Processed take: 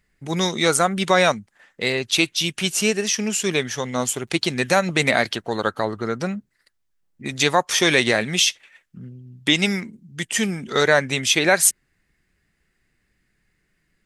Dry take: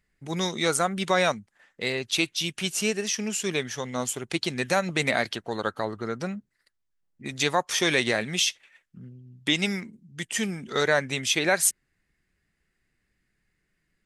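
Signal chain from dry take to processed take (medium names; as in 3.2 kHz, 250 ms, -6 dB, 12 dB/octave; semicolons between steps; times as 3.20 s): 4.03–5.63 s: crackle 57 per s -57 dBFS; trim +6 dB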